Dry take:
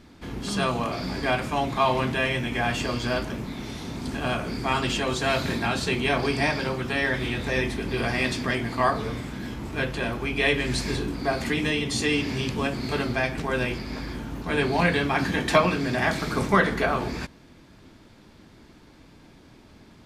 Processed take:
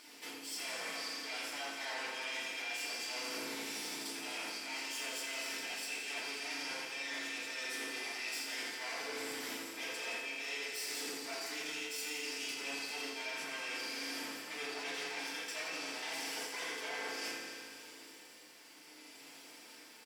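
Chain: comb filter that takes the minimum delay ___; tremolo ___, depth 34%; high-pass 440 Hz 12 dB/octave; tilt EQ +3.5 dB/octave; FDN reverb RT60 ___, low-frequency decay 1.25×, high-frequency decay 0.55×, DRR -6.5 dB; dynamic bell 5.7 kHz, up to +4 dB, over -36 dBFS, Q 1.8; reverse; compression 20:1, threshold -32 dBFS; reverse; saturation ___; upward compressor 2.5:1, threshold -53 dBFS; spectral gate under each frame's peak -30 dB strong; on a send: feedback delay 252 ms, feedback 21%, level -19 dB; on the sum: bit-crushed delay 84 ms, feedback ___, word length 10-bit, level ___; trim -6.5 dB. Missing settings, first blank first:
0.39 ms, 0.62 Hz, 0.91 s, -24 dBFS, 80%, -7.5 dB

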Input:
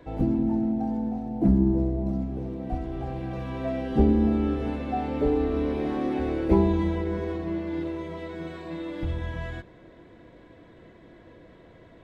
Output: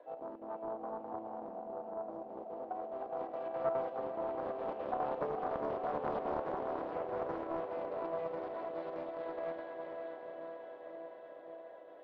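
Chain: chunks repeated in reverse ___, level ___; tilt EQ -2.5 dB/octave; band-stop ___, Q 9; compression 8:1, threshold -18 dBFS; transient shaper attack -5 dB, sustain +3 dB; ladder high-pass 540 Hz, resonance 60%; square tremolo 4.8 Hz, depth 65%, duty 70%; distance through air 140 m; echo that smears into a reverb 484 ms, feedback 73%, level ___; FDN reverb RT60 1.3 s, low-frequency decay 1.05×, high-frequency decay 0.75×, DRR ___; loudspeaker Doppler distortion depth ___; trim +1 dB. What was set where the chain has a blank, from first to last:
246 ms, -11 dB, 2.2 kHz, -4 dB, 17.5 dB, 0.45 ms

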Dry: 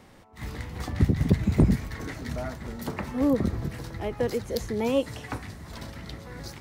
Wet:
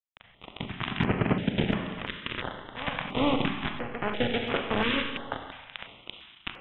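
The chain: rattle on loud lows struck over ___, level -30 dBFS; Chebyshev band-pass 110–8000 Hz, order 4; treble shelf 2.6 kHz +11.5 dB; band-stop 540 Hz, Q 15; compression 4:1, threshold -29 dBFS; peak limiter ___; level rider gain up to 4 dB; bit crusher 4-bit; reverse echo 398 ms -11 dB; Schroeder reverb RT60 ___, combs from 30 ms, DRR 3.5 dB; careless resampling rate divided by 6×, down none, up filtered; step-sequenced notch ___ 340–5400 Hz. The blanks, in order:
-24 dBFS, -19 dBFS, 1.4 s, 2.9 Hz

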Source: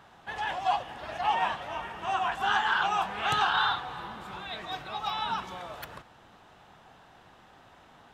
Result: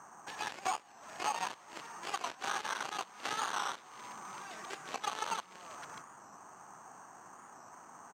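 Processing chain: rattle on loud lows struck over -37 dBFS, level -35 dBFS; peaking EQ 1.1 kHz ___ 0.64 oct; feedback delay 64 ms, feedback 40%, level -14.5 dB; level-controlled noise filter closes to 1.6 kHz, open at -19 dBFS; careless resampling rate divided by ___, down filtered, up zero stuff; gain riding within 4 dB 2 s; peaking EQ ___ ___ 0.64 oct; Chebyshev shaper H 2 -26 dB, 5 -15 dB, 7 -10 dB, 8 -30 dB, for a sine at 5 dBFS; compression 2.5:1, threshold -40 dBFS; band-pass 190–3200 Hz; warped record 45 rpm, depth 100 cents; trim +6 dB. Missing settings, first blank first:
+8 dB, 6×, 530 Hz, -4 dB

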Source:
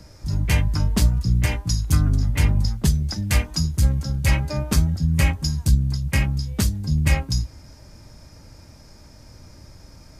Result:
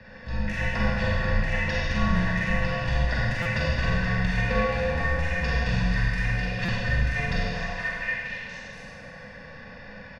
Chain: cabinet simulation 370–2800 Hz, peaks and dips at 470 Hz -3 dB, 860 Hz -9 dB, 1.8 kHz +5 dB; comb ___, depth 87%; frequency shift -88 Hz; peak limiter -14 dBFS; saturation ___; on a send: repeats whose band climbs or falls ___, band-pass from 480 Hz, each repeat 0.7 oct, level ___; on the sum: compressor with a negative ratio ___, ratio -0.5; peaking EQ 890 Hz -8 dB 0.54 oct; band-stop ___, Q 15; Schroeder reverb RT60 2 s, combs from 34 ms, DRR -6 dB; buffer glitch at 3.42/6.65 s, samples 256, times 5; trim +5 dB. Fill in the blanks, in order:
1.1 ms, -23 dBFS, 237 ms, -2.5 dB, -33 dBFS, 1.6 kHz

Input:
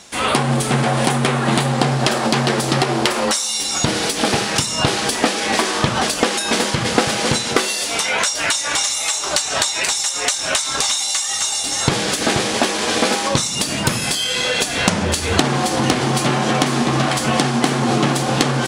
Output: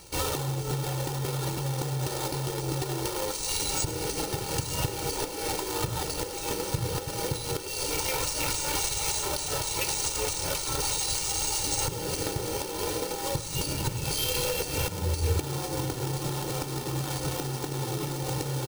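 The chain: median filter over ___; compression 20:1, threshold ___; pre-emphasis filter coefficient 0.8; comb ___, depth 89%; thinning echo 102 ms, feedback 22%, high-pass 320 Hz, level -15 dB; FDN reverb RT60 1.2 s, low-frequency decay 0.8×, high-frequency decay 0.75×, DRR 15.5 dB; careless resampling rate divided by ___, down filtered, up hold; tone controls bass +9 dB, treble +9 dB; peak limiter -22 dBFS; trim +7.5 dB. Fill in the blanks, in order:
25 samples, -26 dBFS, 2.2 ms, 3×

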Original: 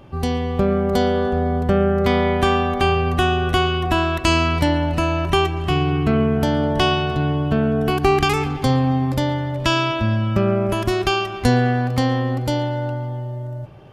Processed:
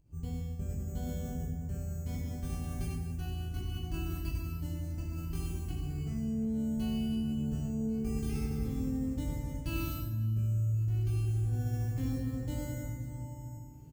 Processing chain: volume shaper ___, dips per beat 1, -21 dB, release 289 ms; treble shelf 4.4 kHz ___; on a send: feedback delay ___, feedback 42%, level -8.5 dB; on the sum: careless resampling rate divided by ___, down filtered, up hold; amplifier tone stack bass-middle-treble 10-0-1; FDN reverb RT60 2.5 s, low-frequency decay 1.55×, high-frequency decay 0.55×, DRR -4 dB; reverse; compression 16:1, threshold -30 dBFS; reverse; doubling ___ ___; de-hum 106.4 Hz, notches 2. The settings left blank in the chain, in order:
84 bpm, -8.5 dB, 95 ms, 6×, 19 ms, -5 dB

